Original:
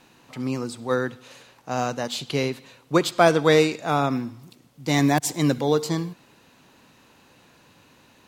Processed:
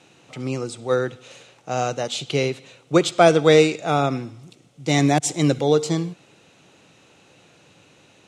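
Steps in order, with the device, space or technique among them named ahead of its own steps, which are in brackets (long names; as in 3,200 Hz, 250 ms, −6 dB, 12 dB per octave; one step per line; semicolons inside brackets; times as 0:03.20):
car door speaker (loudspeaker in its box 100–9,000 Hz, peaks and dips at 240 Hz −9 dB, 1,000 Hz −10 dB, 1,700 Hz −7 dB, 4,600 Hz −6 dB)
level +4.5 dB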